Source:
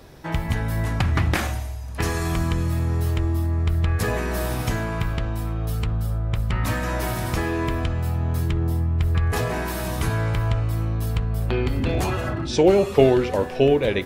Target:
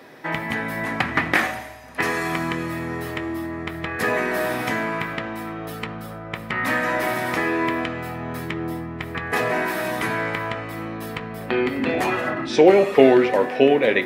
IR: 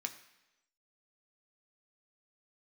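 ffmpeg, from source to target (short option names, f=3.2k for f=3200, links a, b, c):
-filter_complex "[0:a]highpass=230,equalizer=f=1.9k:w=5.8:g=7,asplit=2[a][b];[1:a]atrim=start_sample=2205,lowpass=3.6k[c];[b][c]afir=irnorm=-1:irlink=0,volume=3.5dB[d];[a][d]amix=inputs=2:normalize=0,volume=-2dB"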